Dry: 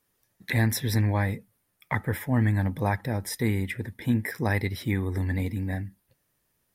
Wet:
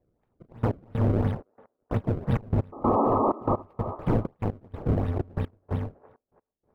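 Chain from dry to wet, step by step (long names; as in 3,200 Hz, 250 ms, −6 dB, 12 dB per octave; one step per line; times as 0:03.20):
samples in bit-reversed order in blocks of 128 samples
sample-and-hold swept by an LFO 29×, swing 160% 2.9 Hz
0:00.66–0:01.11: transient designer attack −12 dB, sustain +9 dB
drawn EQ curve 490 Hz 0 dB, 2,500 Hz −7 dB, 6,400 Hz −15 dB
0:02.72–0:03.63: sound drawn into the spectrogram noise 200–1,300 Hz −17 dBFS
0:05.18–0:05.71: noise gate with hold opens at −20 dBFS
tilt shelving filter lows +8.5 dB, about 1,400 Hz
on a send: delay with a band-pass on its return 326 ms, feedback 35%, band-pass 820 Hz, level −16.5 dB
on the sum: gate pattern "xxxxxx..x..." 190 BPM −24 dB
brickwall limiter −9 dBFS, peak gain reduction 9 dB
level −5 dB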